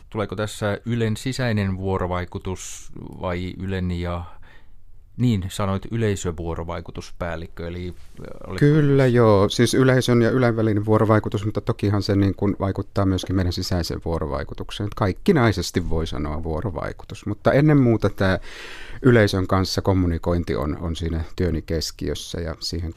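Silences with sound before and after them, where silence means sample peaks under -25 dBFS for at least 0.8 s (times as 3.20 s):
4.22–5.20 s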